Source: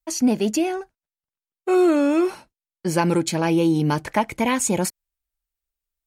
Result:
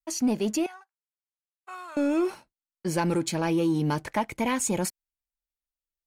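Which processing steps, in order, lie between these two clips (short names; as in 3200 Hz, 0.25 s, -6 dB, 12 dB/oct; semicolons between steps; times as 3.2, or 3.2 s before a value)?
sample leveller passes 1; 0.66–1.97 ladder high-pass 850 Hz, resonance 45%; gain -8.5 dB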